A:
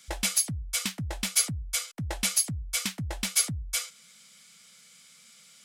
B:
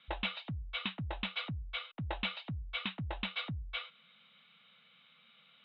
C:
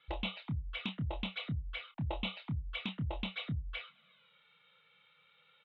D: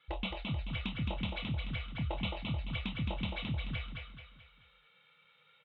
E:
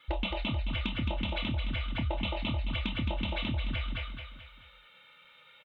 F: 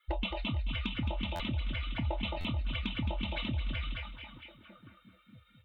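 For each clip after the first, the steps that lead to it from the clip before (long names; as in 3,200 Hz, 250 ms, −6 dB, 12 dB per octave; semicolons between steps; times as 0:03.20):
Chebyshev low-pass with heavy ripple 3,900 Hz, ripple 6 dB
high-shelf EQ 3,600 Hz −10 dB; flanger swept by the level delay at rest 2.4 ms, full sweep at −36.5 dBFS; double-tracking delay 27 ms −8 dB; level +2.5 dB
bass and treble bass +1 dB, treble −4 dB; on a send: repeating echo 217 ms, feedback 42%, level −4 dB
comb filter 3.3 ms, depth 58%; downward compressor, threshold −37 dBFS, peak gain reduction 7.5 dB; level +8.5 dB
spectral dynamics exaggerated over time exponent 1.5; echo through a band-pass that steps 459 ms, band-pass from 2,900 Hz, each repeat −1.4 octaves, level −7.5 dB; buffer that repeats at 0:01.35/0:02.40, samples 512, times 3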